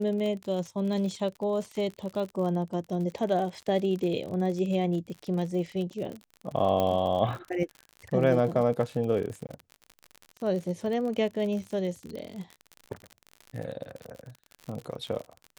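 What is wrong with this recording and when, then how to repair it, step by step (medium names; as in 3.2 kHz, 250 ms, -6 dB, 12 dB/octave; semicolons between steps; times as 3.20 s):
crackle 53 per s -34 dBFS
6.80 s: pop -15 dBFS
9.47–9.49 s: dropout 19 ms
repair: de-click; interpolate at 9.47 s, 19 ms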